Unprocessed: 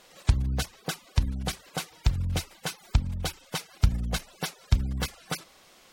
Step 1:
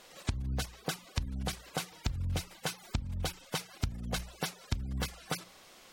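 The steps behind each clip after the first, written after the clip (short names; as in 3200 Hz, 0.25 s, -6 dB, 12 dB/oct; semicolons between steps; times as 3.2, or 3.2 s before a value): notches 60/120/180 Hz; compressor 6:1, threshold -30 dBFS, peak gain reduction 14.5 dB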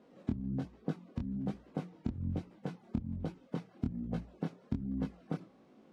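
band-pass 240 Hz, Q 2.3; chorus 1.2 Hz, delay 18.5 ms, depth 7.3 ms; gain +12 dB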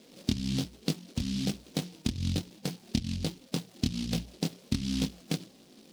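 noise-modulated delay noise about 3900 Hz, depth 0.22 ms; gain +5.5 dB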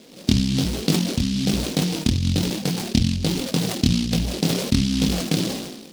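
sustainer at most 46 dB/s; gain +8.5 dB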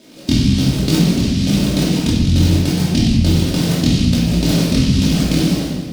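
reverb RT60 1.2 s, pre-delay 3 ms, DRR -5.5 dB; gain -1.5 dB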